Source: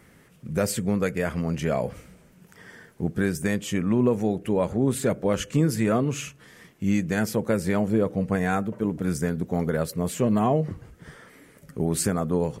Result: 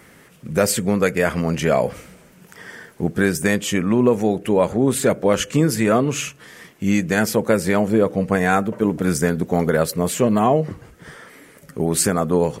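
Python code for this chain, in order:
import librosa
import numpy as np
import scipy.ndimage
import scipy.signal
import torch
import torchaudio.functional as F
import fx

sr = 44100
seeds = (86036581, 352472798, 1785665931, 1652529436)

p1 = fx.low_shelf(x, sr, hz=210.0, db=-8.5)
p2 = fx.rider(p1, sr, range_db=10, speed_s=0.5)
p3 = p1 + F.gain(torch.from_numpy(p2), 0.0).numpy()
y = F.gain(torch.from_numpy(p3), 3.0).numpy()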